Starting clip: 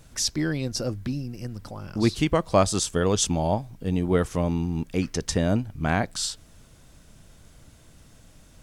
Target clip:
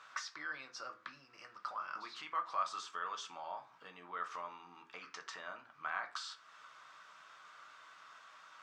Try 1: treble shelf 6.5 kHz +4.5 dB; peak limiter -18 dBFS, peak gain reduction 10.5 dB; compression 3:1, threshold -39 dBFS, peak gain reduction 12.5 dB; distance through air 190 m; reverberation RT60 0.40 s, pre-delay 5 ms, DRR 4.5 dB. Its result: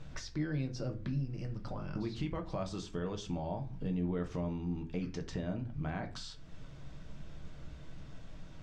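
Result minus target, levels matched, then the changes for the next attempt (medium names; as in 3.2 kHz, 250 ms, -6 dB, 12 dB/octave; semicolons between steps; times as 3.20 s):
1 kHz band -11.5 dB
add after compression: resonant high-pass 1.2 kHz, resonance Q 4.8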